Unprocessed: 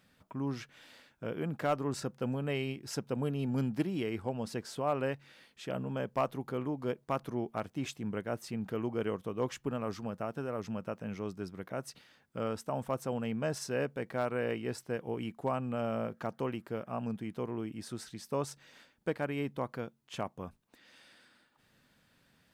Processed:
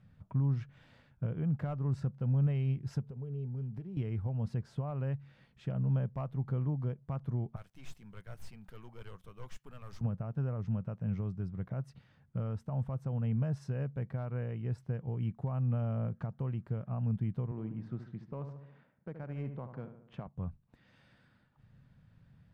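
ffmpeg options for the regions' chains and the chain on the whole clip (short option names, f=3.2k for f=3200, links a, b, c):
-filter_complex "[0:a]asettb=1/sr,asplit=3[a][b][c];[a]atrim=end=3.014[d];[b]atrim=start=3.01:end=3.97,asetpts=PTS-STARTPTS,afade=t=in:d=0.004:c=qsin,afade=t=out:st=0.956:d=0.004:c=qsin,acompressor=threshold=-45dB:ratio=16:attack=3.2:release=140:knee=1:detection=peak,equalizer=f=420:t=o:w=0.21:g=14[e];[c]atrim=start=3.966[f];[d][e]acrossfade=d=0.004:c1=hsin:c2=qsin[g];[g][f]acrossfade=d=0.004:c1=qsin:c2=hsin,asettb=1/sr,asplit=3[h][i][j];[h]atrim=end=7.564[k];[i]atrim=start=7.56:end=10.01,asetpts=PTS-STARTPTS,afade=t=in:d=0.004:c=qsin,afade=t=out:st=2.446:d=0.004:c=qsin,aderivative,aeval=exprs='(tanh(355*val(0)+0.6)-tanh(0.6))/355':c=same,aeval=exprs='0.0158*sin(PI/2*2.82*val(0)/0.0158)':c=same[l];[j]atrim=start=10.006[m];[k][l]acrossfade=d=0.004:c1=hsin:c2=qsin[n];[n][m]acrossfade=d=0.004:c1=qsin:c2=hsin,asettb=1/sr,asplit=3[o][p][q];[o]atrim=end=17.514[r];[p]atrim=start=17.51:end=20.27,asetpts=PTS-STARTPTS,afade=t=in:d=0.004:c=qsin,afade=t=out:st=2.756:d=0.004:c=qsin,highpass=200,adynamicsmooth=sensitivity=6.5:basefreq=2.1k,asplit=2[s][t];[t]adelay=72,lowpass=f=2.4k:p=1,volume=-10dB,asplit=2[u][v];[v]adelay=72,lowpass=f=2.4k:p=1,volume=0.5,asplit=2[w][x];[x]adelay=72,lowpass=f=2.4k:p=1,volume=0.5,asplit=2[y][z];[z]adelay=72,lowpass=f=2.4k:p=1,volume=0.5,asplit=2[aa][ab];[ab]adelay=72,lowpass=f=2.4k:p=1,volume=0.5[ac];[s][u][w][y][aa][ac]amix=inputs=6:normalize=0,atrim=end_sample=121716[ad];[q]atrim=start=20.266[ae];[r][ad]acrossfade=d=0.004:c1=hsin:c2=qsin[af];[af][ae]acrossfade=d=0.004:c1=qsin:c2=hsin,alimiter=level_in=6dB:limit=-24dB:level=0:latency=1:release=336,volume=-6dB,lowpass=f=1.1k:p=1,lowshelf=f=200:t=q:w=1.5:g=13.5,volume=-1dB"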